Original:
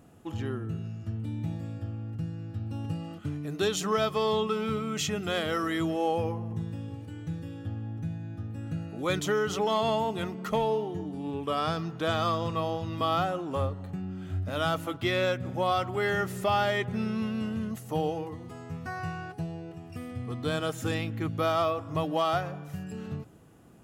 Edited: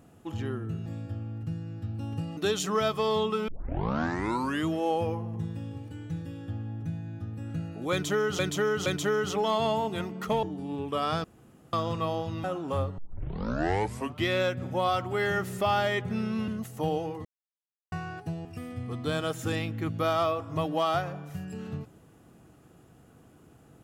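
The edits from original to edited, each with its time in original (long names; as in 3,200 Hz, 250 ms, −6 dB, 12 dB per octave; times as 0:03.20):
0:00.86–0:01.58: remove
0:03.09–0:03.54: remove
0:04.65: tape start 1.20 s
0:09.09–0:09.56: repeat, 3 plays
0:10.66–0:10.98: remove
0:11.79–0:12.28: fill with room tone
0:12.99–0:13.27: remove
0:13.81: tape start 1.30 s
0:17.31–0:17.60: remove
0:18.37–0:19.04: silence
0:19.57–0:19.84: remove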